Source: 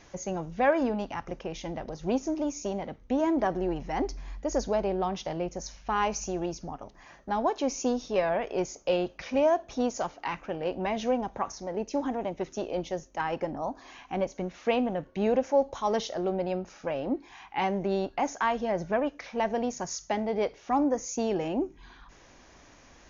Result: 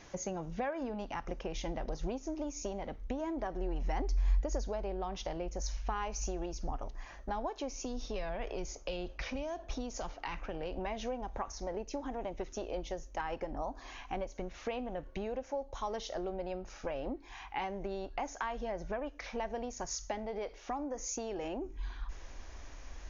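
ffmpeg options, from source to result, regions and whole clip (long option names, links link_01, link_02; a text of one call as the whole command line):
ffmpeg -i in.wav -filter_complex "[0:a]asettb=1/sr,asplit=3[link_01][link_02][link_03];[link_01]atrim=end=7.714[link_04];[link_02]atrim=start=7.71:end=10.77,asetpts=PTS-STARTPTS,afade=type=in:duration=0.004:curve=qsin,afade=type=out:start_time=3.056:duration=0.004:curve=qsin,acrossover=split=240|3000[link_05][link_06][link_07];[link_06]acompressor=threshold=-34dB:ratio=6:attack=3.2:release=140:knee=2.83:detection=peak[link_08];[link_05][link_08][link_07]amix=inputs=3:normalize=0,lowpass=6400[link_09];[link_03]atrim=start=10.766[link_10];[link_04][link_09]acrossfade=duration=0.004:curve1=hsin:curve2=qsin[link_11];[link_11][link_10]acrossfade=duration=0.004:curve1=qsin:curve2=hsin,asettb=1/sr,asplit=3[link_12][link_13][link_14];[link_12]atrim=end=20.264[link_15];[link_13]atrim=start=20.26:end=21.66,asetpts=PTS-STARTPTS,afade=type=in:duration=0.004:curve=qsin,afade=type=out:start_time=1.396:duration=0.004:curve=qsin,equalizer=frequency=81:width_type=o:width=1.3:gain=-13,acompressor=threshold=-28dB:ratio=2:attack=3.2:release=140:knee=1:detection=peak[link_16];[link_14]atrim=start=21.656[link_17];[link_15][link_16]acrossfade=duration=0.004:curve1=hsin:curve2=qsin[link_18];[link_18][link_17]acrossfade=duration=0.004:curve1=qsin:curve2=hsin,acompressor=threshold=-34dB:ratio=6,asubboost=boost=9.5:cutoff=51" out.wav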